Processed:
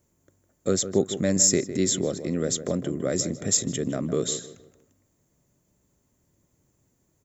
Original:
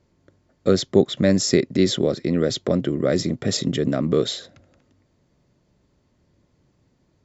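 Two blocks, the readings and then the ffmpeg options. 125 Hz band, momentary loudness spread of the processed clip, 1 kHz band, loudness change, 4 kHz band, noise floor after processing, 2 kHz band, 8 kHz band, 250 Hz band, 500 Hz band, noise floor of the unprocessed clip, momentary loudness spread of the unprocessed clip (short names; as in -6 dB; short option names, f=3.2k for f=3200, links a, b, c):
-6.0 dB, 9 LU, -6.0 dB, -3.5 dB, -5.0 dB, -71 dBFS, -6.5 dB, n/a, -6.0 dB, -6.0 dB, -66 dBFS, 5 LU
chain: -filter_complex "[0:a]aexciter=amount=10.3:drive=5.7:freq=6.7k,asplit=2[a][b];[b]adelay=156,lowpass=f=1.7k:p=1,volume=-11dB,asplit=2[c][d];[d]adelay=156,lowpass=f=1.7k:p=1,volume=0.36,asplit=2[e][f];[f]adelay=156,lowpass=f=1.7k:p=1,volume=0.36,asplit=2[g][h];[h]adelay=156,lowpass=f=1.7k:p=1,volume=0.36[i];[c][e][g][i]amix=inputs=4:normalize=0[j];[a][j]amix=inputs=2:normalize=0,volume=-6.5dB"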